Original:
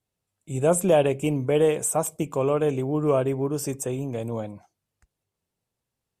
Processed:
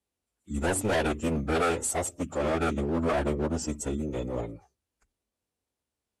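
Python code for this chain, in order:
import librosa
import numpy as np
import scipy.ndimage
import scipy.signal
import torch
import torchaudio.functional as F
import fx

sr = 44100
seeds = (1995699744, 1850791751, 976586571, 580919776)

y = scipy.signal.sosfilt(scipy.signal.butter(2, 88.0, 'highpass', fs=sr, output='sos'), x)
y = np.clip(y, -10.0 ** (-21.5 / 20.0), 10.0 ** (-21.5 / 20.0))
y = fx.hum_notches(y, sr, base_hz=60, count=4)
y = fx.pitch_keep_formants(y, sr, semitones=-10.5)
y = y * 10.0 ** (-1.0 / 20.0)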